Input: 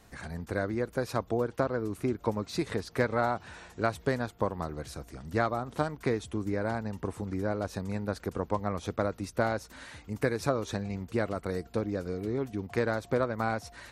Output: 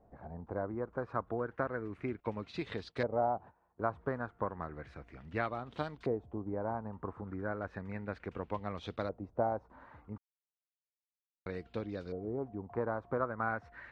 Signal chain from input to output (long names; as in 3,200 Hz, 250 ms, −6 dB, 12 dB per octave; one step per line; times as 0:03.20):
auto-filter low-pass saw up 0.33 Hz 650–4,000 Hz
0:02.20–0:03.91: noise gate −40 dBFS, range −18 dB
0:10.18–0:11.46: silence
level −8 dB